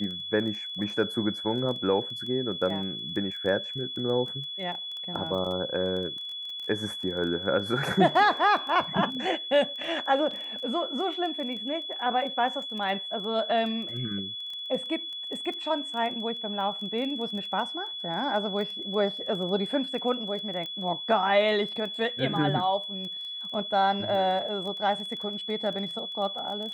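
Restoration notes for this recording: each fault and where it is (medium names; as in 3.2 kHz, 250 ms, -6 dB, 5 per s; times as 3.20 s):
crackle 14 per s -35 dBFS
whine 3.4 kHz -34 dBFS
10.31 s: dropout 3.5 ms
20.66 s: pop -24 dBFS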